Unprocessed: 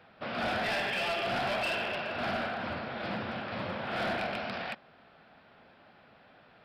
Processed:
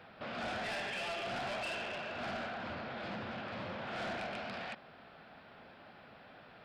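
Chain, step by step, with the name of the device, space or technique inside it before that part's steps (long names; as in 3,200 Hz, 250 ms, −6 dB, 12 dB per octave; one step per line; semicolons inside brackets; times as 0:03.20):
soft clipper into limiter (soft clipping −29 dBFS, distortion −20 dB; brickwall limiter −38.5 dBFS, peak gain reduction 8 dB)
level +2.5 dB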